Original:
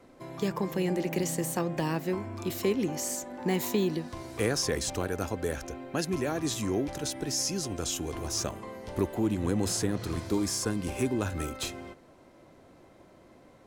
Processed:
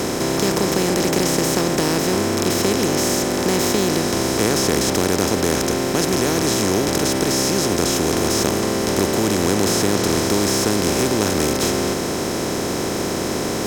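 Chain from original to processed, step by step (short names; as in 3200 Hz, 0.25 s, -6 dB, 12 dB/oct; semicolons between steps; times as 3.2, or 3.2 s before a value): per-bin compression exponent 0.2; gain +2 dB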